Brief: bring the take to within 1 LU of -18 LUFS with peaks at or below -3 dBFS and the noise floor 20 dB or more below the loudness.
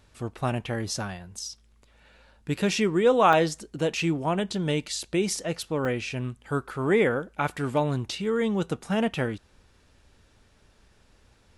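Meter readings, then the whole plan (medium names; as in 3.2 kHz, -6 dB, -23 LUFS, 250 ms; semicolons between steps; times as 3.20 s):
dropouts 2; longest dropout 1.5 ms; loudness -26.5 LUFS; peak level -6.5 dBFS; loudness target -18.0 LUFS
-> interpolate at 3.33/5.85 s, 1.5 ms; trim +8.5 dB; peak limiter -3 dBFS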